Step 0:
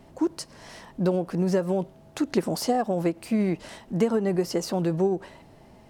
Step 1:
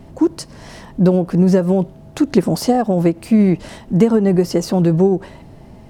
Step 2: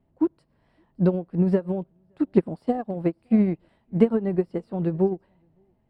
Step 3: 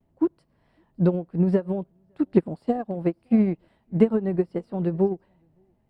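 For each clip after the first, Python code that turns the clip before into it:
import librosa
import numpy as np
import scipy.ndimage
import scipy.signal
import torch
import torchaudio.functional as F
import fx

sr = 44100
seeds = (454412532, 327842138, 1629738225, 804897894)

y1 = fx.low_shelf(x, sr, hz=290.0, db=10.0)
y1 = y1 * librosa.db_to_amplitude(5.5)
y2 = scipy.signal.lfilter(np.full(7, 1.0 / 7), 1.0, y1)
y2 = y2 + 10.0 ** (-22.0 / 20.0) * np.pad(y2, (int(566 * sr / 1000.0), 0))[:len(y2)]
y2 = fx.upward_expand(y2, sr, threshold_db=-24.0, expansion=2.5)
y2 = y2 * librosa.db_to_amplitude(-3.5)
y3 = fx.vibrato(y2, sr, rate_hz=0.67, depth_cents=38.0)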